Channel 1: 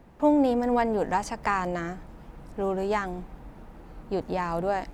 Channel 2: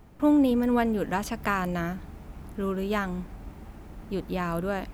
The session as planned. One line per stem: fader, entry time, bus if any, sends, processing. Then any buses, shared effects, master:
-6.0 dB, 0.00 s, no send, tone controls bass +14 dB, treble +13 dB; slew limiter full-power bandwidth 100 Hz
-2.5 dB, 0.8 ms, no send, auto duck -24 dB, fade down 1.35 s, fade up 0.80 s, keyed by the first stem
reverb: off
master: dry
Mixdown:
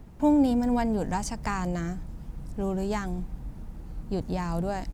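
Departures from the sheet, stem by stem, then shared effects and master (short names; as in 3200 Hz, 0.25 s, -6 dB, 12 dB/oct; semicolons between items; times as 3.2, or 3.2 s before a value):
stem 1: missing slew limiter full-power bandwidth 100 Hz; master: extra high shelf 9100 Hz -3.5 dB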